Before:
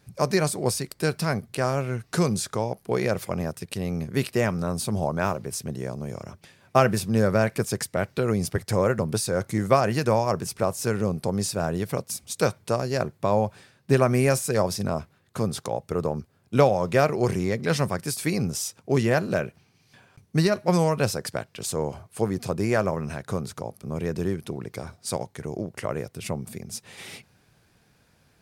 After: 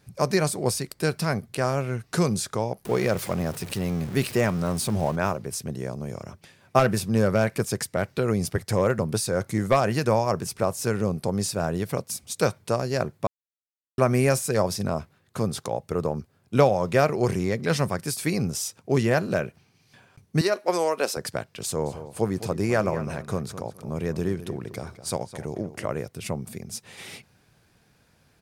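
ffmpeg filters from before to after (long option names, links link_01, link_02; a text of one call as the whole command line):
ffmpeg -i in.wav -filter_complex "[0:a]asettb=1/sr,asplit=3[link_01][link_02][link_03];[link_01]atrim=end=2.854[link_04];[link_02]atrim=start=2.85:end=5.16,asetpts=PTS-STARTPTS,afade=type=in:duration=0.004:curve=qsin,afade=type=out:start_time=2.306:duration=0.004:curve=qsin,aeval=exprs='val(0)+0.5*0.02*sgn(val(0))':channel_layout=same[link_05];[link_03]atrim=start=5.156[link_06];[link_04][link_05]acrossfade=duration=0.004:curve1=hsin:curve2=qsin[link_07];[link_07][link_06]acrossfade=duration=0.004:curve1=qsin:curve2=hsin,asettb=1/sr,asplit=3[link_08][link_09][link_10];[link_08]atrim=end=6.794[link_11];[link_09]atrim=start=6.79:end=9.94,asetpts=PTS-STARTPTS,afade=type=in:duration=0.004:curve=qsin,afade=type=out:start_time=3.146:duration=0.004:curve=qsin,asoftclip=type=hard:threshold=-11.5dB[link_12];[link_10]atrim=start=9.936[link_13];[link_11][link_12]acrossfade=duration=0.004:curve1=hsin:curve2=qsin[link_14];[link_14][link_13]acrossfade=duration=0.004:curve1=qsin:curve2=hsin,asettb=1/sr,asplit=3[link_15][link_16][link_17];[link_15]atrim=end=20.414[link_18];[link_16]atrim=start=20.41:end=21.17,asetpts=PTS-STARTPTS,afade=type=in:duration=0.004:curve=qsin,afade=type=out:start_time=0.756:duration=0.004:curve=qsin,highpass=frequency=300:width=0.5412,highpass=frequency=300:width=1.3066[link_19];[link_17]atrim=start=21.166[link_20];[link_18][link_19]acrossfade=duration=0.004:curve1=hsin:curve2=qsin[link_21];[link_21][link_20]acrossfade=duration=0.004:curve1=qsin:curve2=hsin,asplit=3[link_22][link_23][link_24];[link_22]afade=type=out:start_time=21.85:duration=0.02[link_25];[link_23]asplit=2[link_26][link_27];[link_27]adelay=210,lowpass=frequency=3800:poles=1,volume=-12.5dB,asplit=2[link_28][link_29];[link_29]adelay=210,lowpass=frequency=3800:poles=1,volume=0.24,asplit=2[link_30][link_31];[link_31]adelay=210,lowpass=frequency=3800:poles=1,volume=0.24[link_32];[link_26][link_28][link_30][link_32]amix=inputs=4:normalize=0,afade=type=in:start_time=21.85:duration=0.02,afade=type=out:start_time=25.97:duration=0.02[link_33];[link_24]afade=type=in:start_time=25.97:duration=0.02[link_34];[link_25][link_33][link_34]amix=inputs=3:normalize=0,asplit=3[link_35][link_36][link_37];[link_35]atrim=end=13.27,asetpts=PTS-STARTPTS,afade=type=out:start_time=13.266:duration=0.004:curve=hsin[link_38];[link_36]atrim=start=13.27:end=13.98,asetpts=PTS-STARTPTS,volume=0[link_39];[link_37]atrim=start=13.98,asetpts=PTS-STARTPTS,afade=type=in:duration=0.004:curve=hsin[link_40];[link_38][link_39][link_40]concat=n=3:v=0:a=1" out.wav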